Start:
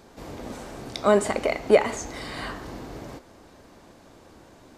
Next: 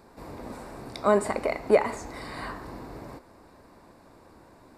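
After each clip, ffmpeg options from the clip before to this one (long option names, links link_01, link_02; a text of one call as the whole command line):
ffmpeg -i in.wav -af "equalizer=frequency=1000:width_type=o:width=0.33:gain=5,equalizer=frequency=3150:width_type=o:width=0.33:gain=-11,equalizer=frequency=6300:width_type=o:width=0.33:gain=-10,volume=-3dB" out.wav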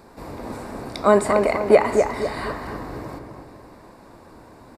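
ffmpeg -i in.wav -filter_complex "[0:a]asplit=2[link_01][link_02];[link_02]adelay=249,lowpass=frequency=2000:poles=1,volume=-4.5dB,asplit=2[link_03][link_04];[link_04]adelay=249,lowpass=frequency=2000:poles=1,volume=0.43,asplit=2[link_05][link_06];[link_06]adelay=249,lowpass=frequency=2000:poles=1,volume=0.43,asplit=2[link_07][link_08];[link_08]adelay=249,lowpass=frequency=2000:poles=1,volume=0.43,asplit=2[link_09][link_10];[link_10]adelay=249,lowpass=frequency=2000:poles=1,volume=0.43[link_11];[link_01][link_03][link_05][link_07][link_09][link_11]amix=inputs=6:normalize=0,volume=6dB" out.wav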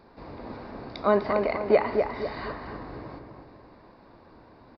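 ffmpeg -i in.wav -af "aresample=11025,aresample=44100,volume=-6.5dB" out.wav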